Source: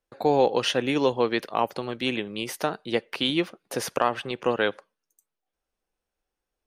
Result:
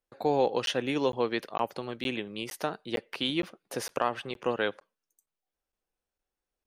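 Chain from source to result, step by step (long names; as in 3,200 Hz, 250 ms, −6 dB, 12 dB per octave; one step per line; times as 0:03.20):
regular buffer underruns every 0.46 s, samples 512, zero, from 0:00.66
level −5 dB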